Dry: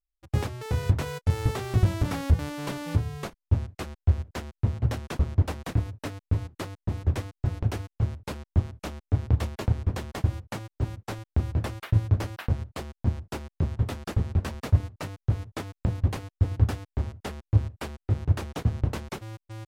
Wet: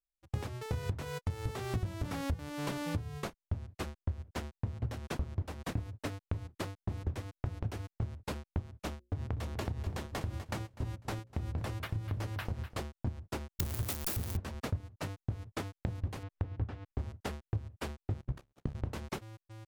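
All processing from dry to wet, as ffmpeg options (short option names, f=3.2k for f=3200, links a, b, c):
-filter_complex "[0:a]asettb=1/sr,asplit=3[a][b][c];[a]atrim=end=8.934[d];[b]atrim=start=8.93:end=12.78,asetpts=PTS-STARTPTS,afade=t=in:d=0.004:c=qsin,afade=t=out:st=3.846:d=0.004:c=qsin,bandreject=f=60:t=h:w=6,bandreject=f=120:t=h:w=6,bandreject=f=180:t=h:w=6,bandreject=f=240:t=h:w=6,bandreject=f=300:t=h:w=6,bandreject=f=360:t=h:w=6,bandreject=f=420:t=h:w=6,bandreject=f=480:t=h:w=6,bandreject=f=540:t=h:w=6,acompressor=threshold=-28dB:ratio=2:attack=3.2:release=140:knee=1:detection=peak,aecho=1:1:249|498|747:0.282|0.0705|0.0176,atrim=end_sample=169785[e];[c]atrim=start=12.776[f];[d][e]acrossfade=d=0.004:c1=hsin:c2=qsin[g];[g][f]acrossfade=d=0.004:c1=qsin:c2=hsin,asettb=1/sr,asplit=3[h][i][j];[h]atrim=end=13.594[k];[i]atrim=start=13.59:end=14.37,asetpts=PTS-STARTPTS,afade=t=in:d=0.004:c=qsin,afade=t=out:st=0.776:d=0.004:c=qsin,aeval=exprs='val(0)+0.5*0.0398*sgn(val(0))':c=same,aemphasis=mode=production:type=75fm[l];[j]atrim=start=14.366[m];[k][l]acrossfade=d=0.004:c1=hsin:c2=qsin[n];[n][m]acrossfade=d=0.004:c1=qsin:c2=hsin,asettb=1/sr,asplit=3[o][p][q];[o]atrim=end=16.234[r];[p]atrim=start=16.23:end=16.92,asetpts=PTS-STARTPTS,afade=t=in:d=0.004:c=qsin,afade=t=out:st=0.686:d=0.004:c=qsin,lowpass=3k,acompressor=mode=upward:threshold=-35dB:ratio=2.5:attack=3.2:release=140:knee=2.83:detection=peak[s];[q]atrim=start=16.916[t];[r][s]acrossfade=d=0.004:c1=hsin:c2=qsin[u];[u][t]acrossfade=d=0.004:c1=qsin:c2=hsin,asettb=1/sr,asplit=3[v][w][x];[v]atrim=end=18.214[y];[w]atrim=start=18.21:end=18.75,asetpts=PTS-STARTPTS,afade=t=in:d=0.004:c=qsin,afade=t=out:st=0.536:d=0.004:c=qsin,agate=range=-25dB:threshold=-30dB:ratio=16:release=100:detection=peak,aeval=exprs='val(0)*sin(2*PI*34*n/s)':c=same[z];[x]atrim=start=18.746[aa];[y][z]acrossfade=d=0.004:c1=hsin:c2=qsin[ab];[ab][aa]acrossfade=d=0.004:c1=qsin:c2=hsin,agate=range=-9dB:threshold=-37dB:ratio=16:detection=peak,acompressor=threshold=-31dB:ratio=6,volume=-1dB"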